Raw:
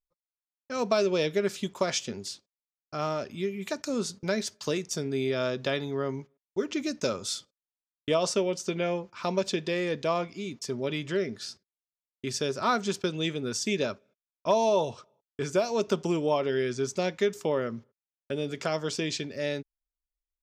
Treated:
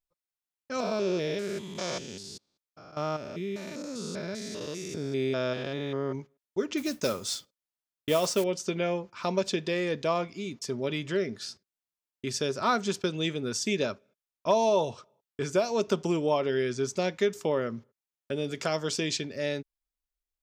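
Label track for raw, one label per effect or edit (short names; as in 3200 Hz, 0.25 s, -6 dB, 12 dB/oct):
0.800000	6.150000	stepped spectrum every 0.2 s
6.770000	8.440000	modulation noise under the signal 17 dB
18.440000	19.170000	high shelf 4400 Hz +4.5 dB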